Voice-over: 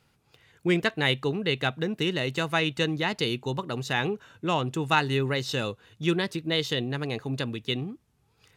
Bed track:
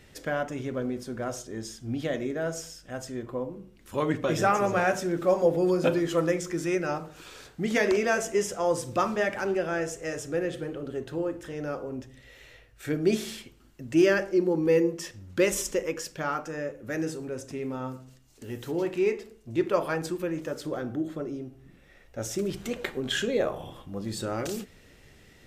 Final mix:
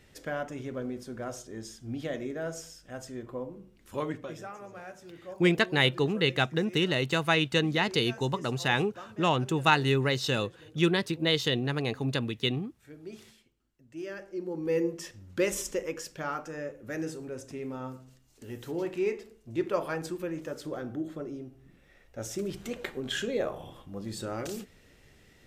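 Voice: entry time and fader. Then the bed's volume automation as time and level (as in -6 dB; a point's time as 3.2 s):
4.75 s, +0.5 dB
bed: 4 s -4.5 dB
4.5 s -20 dB
13.95 s -20 dB
14.85 s -4 dB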